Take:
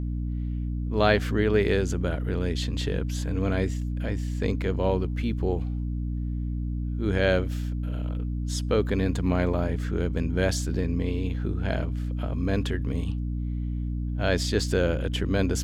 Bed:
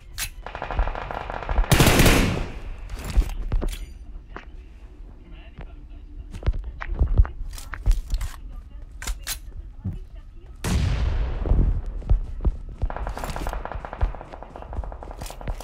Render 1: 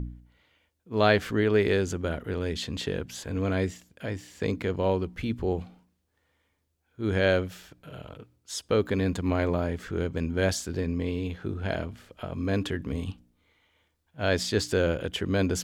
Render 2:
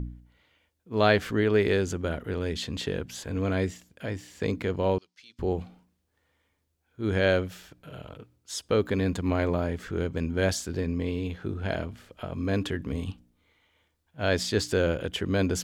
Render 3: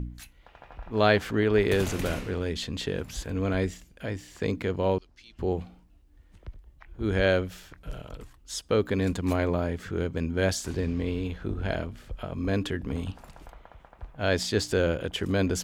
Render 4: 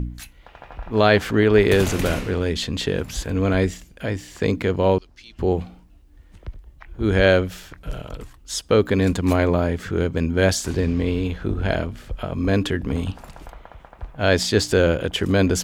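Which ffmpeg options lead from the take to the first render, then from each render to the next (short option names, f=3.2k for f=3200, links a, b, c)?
-af "bandreject=f=60:t=h:w=4,bandreject=f=120:t=h:w=4,bandreject=f=180:t=h:w=4,bandreject=f=240:t=h:w=4,bandreject=f=300:t=h:w=4"
-filter_complex "[0:a]asettb=1/sr,asplit=3[a][b][c];[a]atrim=end=4.984[d];[b]atrim=start=4.98:end=5.39,asetpts=PTS-STARTPTS,afade=t=in:d=0.004:c=qsin,afade=t=out:st=0.406:d=0.004:c=qsin,bandpass=f=5.2k:t=q:w=2.6[e];[c]atrim=start=5.386[f];[d][e]acrossfade=d=0.004:c1=hsin:c2=qsin[g];[g][f]acrossfade=d=0.004:c1=qsin:c2=hsin"
-filter_complex "[1:a]volume=-18.5dB[a];[0:a][a]amix=inputs=2:normalize=0"
-af "volume=7.5dB,alimiter=limit=-3dB:level=0:latency=1"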